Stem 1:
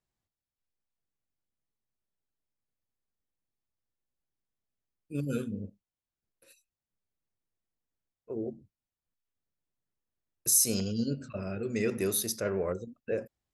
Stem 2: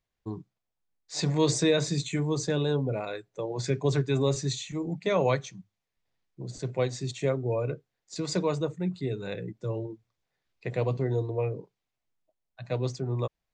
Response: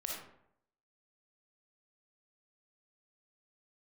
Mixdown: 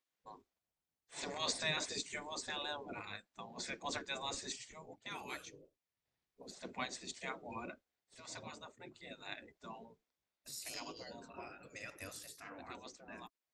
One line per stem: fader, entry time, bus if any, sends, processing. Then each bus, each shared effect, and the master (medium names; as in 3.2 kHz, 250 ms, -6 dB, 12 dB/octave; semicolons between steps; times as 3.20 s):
-7.5 dB, 0.00 s, no send, expander -52 dBFS
-2.5 dB, 0.00 s, no send, auto duck -7 dB, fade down 0.65 s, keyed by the first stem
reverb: none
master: spectral gate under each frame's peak -15 dB weak